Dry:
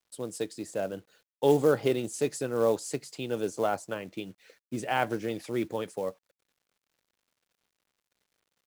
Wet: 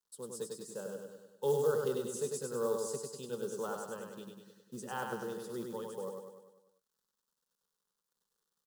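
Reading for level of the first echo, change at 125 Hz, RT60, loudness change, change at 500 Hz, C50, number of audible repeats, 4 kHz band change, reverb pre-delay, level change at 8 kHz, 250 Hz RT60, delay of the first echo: -4.0 dB, -9.0 dB, no reverb, -7.5 dB, -6.5 dB, no reverb, 6, -9.0 dB, no reverb, -3.0 dB, no reverb, 99 ms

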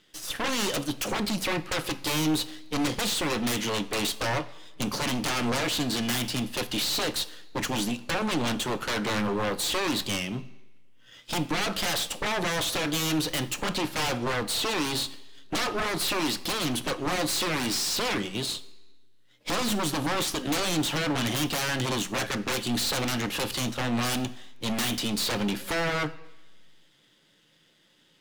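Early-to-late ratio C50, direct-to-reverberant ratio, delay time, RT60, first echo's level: 17.0 dB, 10.0 dB, no echo, 1.1 s, no echo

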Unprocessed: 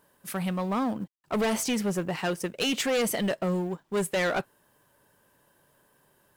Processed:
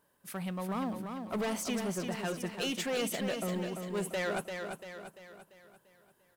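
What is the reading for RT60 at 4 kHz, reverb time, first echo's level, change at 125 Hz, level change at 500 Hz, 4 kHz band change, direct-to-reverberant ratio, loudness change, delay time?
no reverb, no reverb, -6.0 dB, -6.0 dB, -6.5 dB, -6.5 dB, no reverb, -6.5 dB, 343 ms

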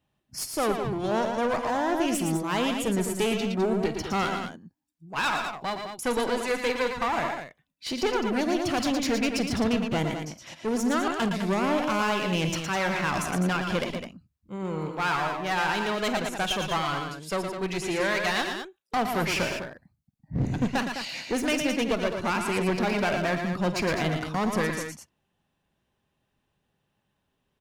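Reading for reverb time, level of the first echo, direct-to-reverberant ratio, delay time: no reverb, -15.5 dB, no reverb, 50 ms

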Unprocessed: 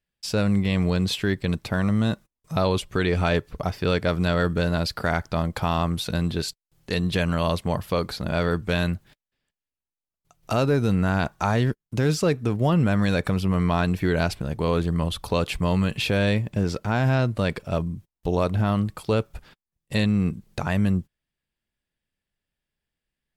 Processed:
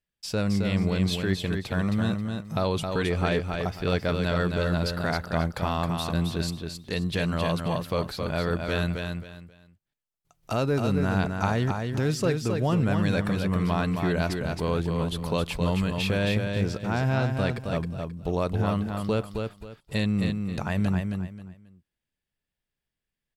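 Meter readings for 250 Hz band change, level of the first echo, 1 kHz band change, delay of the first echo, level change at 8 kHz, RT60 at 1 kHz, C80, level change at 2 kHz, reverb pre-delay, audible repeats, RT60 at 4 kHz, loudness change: -2.5 dB, -5.0 dB, -2.5 dB, 267 ms, -2.5 dB, no reverb, no reverb, -2.5 dB, no reverb, 3, no reverb, -3.0 dB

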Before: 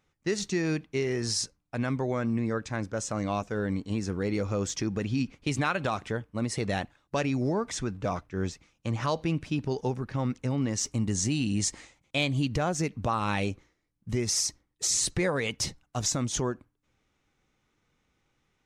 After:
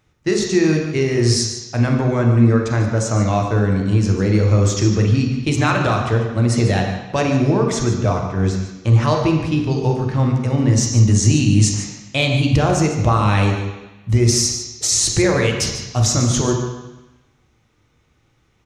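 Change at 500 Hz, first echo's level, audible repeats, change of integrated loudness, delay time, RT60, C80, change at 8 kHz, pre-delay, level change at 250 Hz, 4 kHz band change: +11.5 dB, -12.5 dB, 1, +12.5 dB, 146 ms, 1.0 s, 5.5 dB, +10.0 dB, 3 ms, +12.0 dB, +10.5 dB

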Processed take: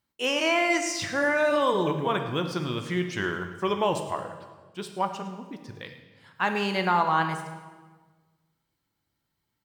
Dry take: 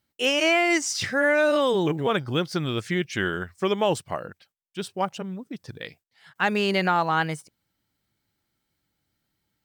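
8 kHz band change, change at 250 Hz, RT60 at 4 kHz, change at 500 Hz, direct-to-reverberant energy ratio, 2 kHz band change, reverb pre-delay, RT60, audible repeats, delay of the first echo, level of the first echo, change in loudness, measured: -3.5 dB, -3.0 dB, 1.1 s, -3.0 dB, 5.5 dB, -3.0 dB, 8 ms, 1.4 s, 1, 108 ms, -17.0 dB, -2.5 dB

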